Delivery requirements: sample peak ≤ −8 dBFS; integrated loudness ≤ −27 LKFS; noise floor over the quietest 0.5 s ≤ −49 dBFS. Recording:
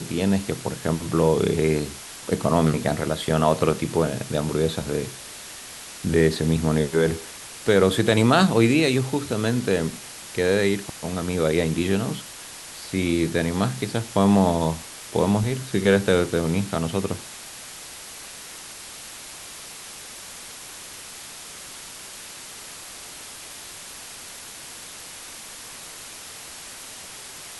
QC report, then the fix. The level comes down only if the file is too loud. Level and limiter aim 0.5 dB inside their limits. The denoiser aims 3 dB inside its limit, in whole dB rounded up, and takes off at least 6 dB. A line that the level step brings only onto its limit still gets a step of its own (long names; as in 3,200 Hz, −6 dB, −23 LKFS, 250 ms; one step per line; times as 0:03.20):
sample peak −4.5 dBFS: out of spec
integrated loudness −22.5 LKFS: out of spec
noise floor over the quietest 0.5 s −40 dBFS: out of spec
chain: broadband denoise 7 dB, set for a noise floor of −40 dBFS
level −5 dB